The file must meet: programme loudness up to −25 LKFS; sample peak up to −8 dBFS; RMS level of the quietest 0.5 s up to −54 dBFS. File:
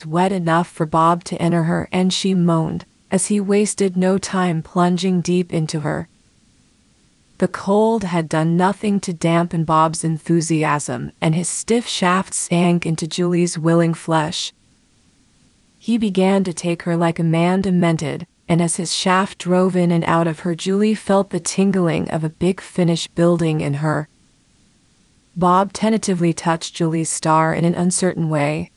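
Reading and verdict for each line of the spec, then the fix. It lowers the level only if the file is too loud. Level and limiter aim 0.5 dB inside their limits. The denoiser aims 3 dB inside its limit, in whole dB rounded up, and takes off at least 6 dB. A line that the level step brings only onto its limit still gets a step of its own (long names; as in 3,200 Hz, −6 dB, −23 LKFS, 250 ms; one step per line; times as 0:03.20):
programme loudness −18.5 LKFS: out of spec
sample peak −2.0 dBFS: out of spec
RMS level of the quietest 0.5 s −56 dBFS: in spec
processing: level −7 dB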